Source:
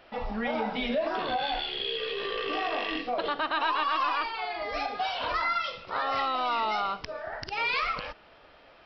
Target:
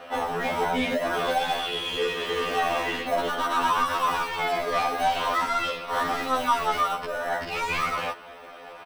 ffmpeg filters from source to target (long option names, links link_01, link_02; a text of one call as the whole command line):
ffmpeg -i in.wav -filter_complex "[0:a]asplit=2[link_01][link_02];[link_02]highpass=frequency=720:poles=1,volume=23dB,asoftclip=type=tanh:threshold=-15dB[link_03];[link_01][link_03]amix=inputs=2:normalize=0,lowpass=frequency=1500:poles=1,volume=-6dB,aecho=1:1:4.1:0.37,asplit=2[link_04][link_05];[link_05]asetrate=35002,aresample=44100,atempo=1.25992,volume=-16dB[link_06];[link_04][link_06]amix=inputs=2:normalize=0,asplit=2[link_07][link_08];[link_08]acrusher=samples=19:mix=1:aa=0.000001,volume=-11.5dB[link_09];[link_07][link_09]amix=inputs=2:normalize=0,afftfilt=real='re*2*eq(mod(b,4),0)':imag='im*2*eq(mod(b,4),0)':win_size=2048:overlap=0.75" out.wav